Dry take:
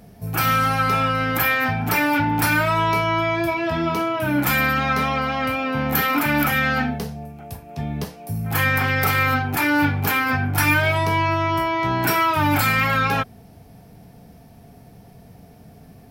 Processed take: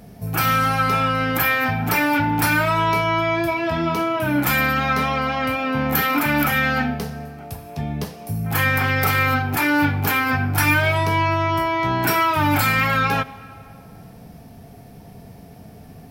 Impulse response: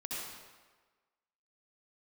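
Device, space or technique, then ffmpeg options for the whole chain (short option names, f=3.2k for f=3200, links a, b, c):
ducked reverb: -filter_complex "[0:a]asplit=3[a][b][c];[1:a]atrim=start_sample=2205[d];[b][d]afir=irnorm=-1:irlink=0[e];[c]apad=whole_len=710385[f];[e][f]sidechaincompress=threshold=-33dB:ratio=12:attack=27:release=686,volume=-3dB[g];[a][g]amix=inputs=2:normalize=0"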